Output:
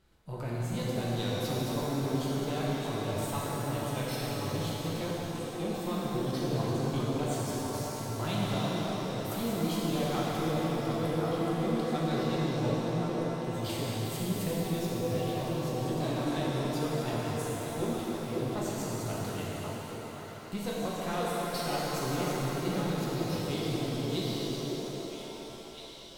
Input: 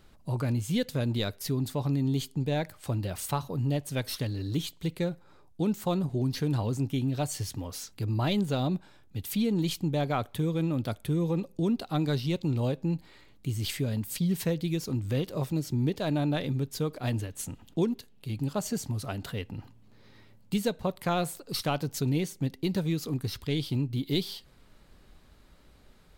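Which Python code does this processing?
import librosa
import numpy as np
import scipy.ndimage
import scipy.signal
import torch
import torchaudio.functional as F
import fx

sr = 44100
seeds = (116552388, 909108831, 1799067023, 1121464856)

y = fx.tube_stage(x, sr, drive_db=24.0, bias=0.75)
y = fx.echo_stepped(y, sr, ms=541, hz=420.0, octaves=1.4, feedback_pct=70, wet_db=-1)
y = fx.rev_shimmer(y, sr, seeds[0], rt60_s=4.0, semitones=7, shimmer_db=-8, drr_db=-6.5)
y = F.gain(torch.from_numpy(y), -6.0).numpy()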